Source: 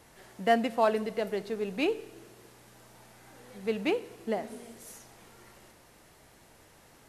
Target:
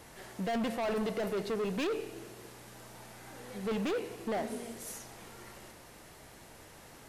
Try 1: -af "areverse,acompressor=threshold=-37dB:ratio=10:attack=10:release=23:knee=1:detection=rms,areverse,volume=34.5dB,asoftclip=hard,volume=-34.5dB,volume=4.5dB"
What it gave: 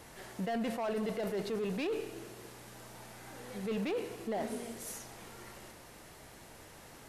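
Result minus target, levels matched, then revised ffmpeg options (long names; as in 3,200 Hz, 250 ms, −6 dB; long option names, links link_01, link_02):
downward compressor: peak gain reduction +6.5 dB
-af "areverse,acompressor=threshold=-30dB:ratio=10:attack=10:release=23:knee=1:detection=rms,areverse,volume=34.5dB,asoftclip=hard,volume=-34.5dB,volume=4.5dB"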